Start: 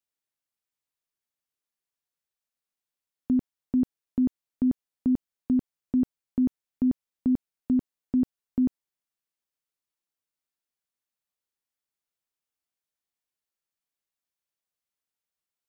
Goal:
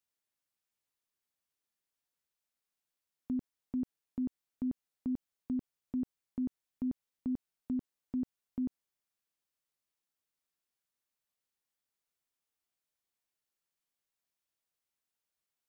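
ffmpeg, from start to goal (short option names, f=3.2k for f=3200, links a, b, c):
-af "alimiter=level_in=5dB:limit=-24dB:level=0:latency=1,volume=-5dB"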